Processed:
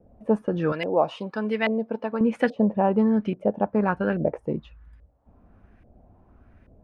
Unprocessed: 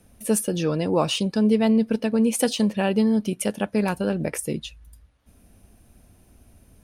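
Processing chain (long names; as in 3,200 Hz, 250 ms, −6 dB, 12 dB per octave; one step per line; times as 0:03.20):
auto-filter low-pass saw up 1.2 Hz 560–2,000 Hz
0:00.72–0:02.21: spectral tilt +4 dB per octave
level −1 dB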